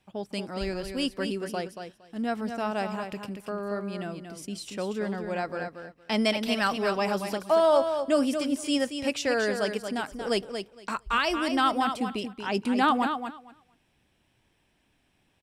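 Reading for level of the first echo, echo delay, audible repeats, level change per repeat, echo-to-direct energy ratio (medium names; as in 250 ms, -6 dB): -7.5 dB, 231 ms, 2, -16.0 dB, -7.5 dB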